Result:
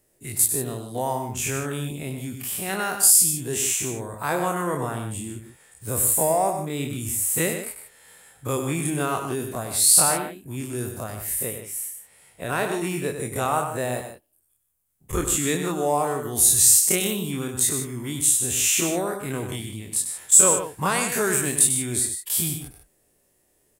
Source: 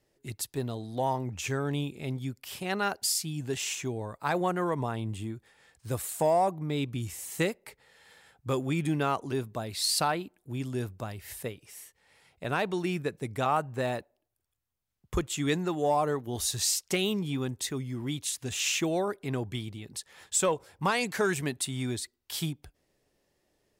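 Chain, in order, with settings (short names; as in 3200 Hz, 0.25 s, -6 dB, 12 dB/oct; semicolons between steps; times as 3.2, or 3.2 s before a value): spectral dilation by 60 ms; resonant high shelf 6700 Hz +11 dB, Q 1.5; notch 840 Hz, Q 27; loudspeakers at several distances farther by 33 m -8 dB, 52 m -11 dB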